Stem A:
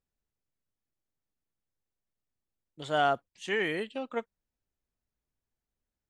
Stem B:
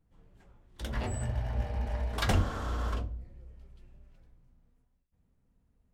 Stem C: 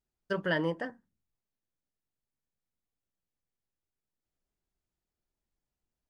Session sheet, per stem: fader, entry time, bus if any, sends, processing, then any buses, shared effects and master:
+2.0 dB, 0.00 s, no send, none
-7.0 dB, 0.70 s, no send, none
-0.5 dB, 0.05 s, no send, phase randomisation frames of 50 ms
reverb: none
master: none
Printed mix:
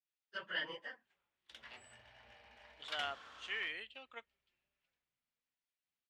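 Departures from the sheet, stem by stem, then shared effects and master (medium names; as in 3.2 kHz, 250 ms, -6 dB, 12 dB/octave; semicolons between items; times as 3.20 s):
stem A +2.0 dB -> -4.5 dB; master: extra band-pass filter 2.8 kHz, Q 1.4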